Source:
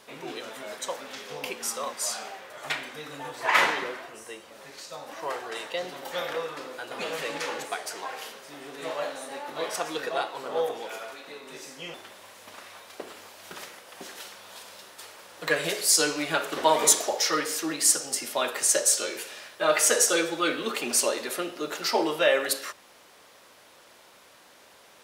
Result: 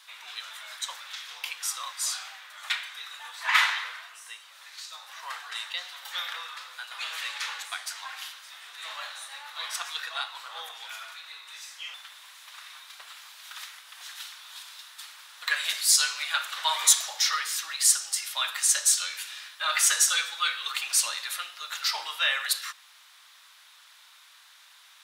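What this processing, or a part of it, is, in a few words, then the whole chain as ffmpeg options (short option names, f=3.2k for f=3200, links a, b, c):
headphones lying on a table: -af "highpass=f=1.1k:w=0.5412,highpass=f=1.1k:w=1.3066,equalizer=f=3.7k:t=o:w=0.39:g=6.5"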